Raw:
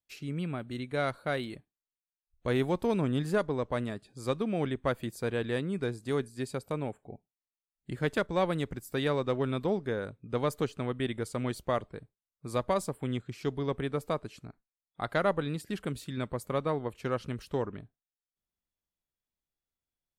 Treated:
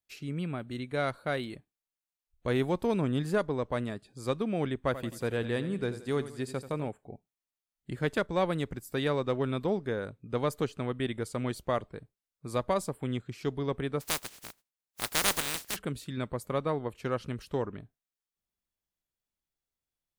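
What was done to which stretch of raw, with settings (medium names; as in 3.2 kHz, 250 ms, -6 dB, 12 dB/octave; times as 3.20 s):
4.76–6.88 s: feedback delay 86 ms, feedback 45%, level -13 dB
14.00–15.75 s: spectral contrast reduction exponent 0.15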